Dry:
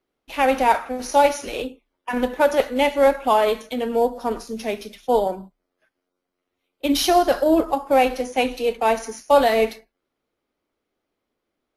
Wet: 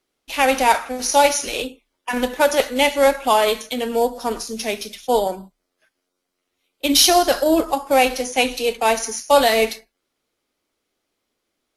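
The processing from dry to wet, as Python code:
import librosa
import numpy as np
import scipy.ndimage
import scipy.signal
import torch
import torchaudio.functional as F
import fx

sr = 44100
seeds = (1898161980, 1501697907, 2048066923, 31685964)

y = fx.peak_eq(x, sr, hz=7600.0, db=12.0, octaves=2.8)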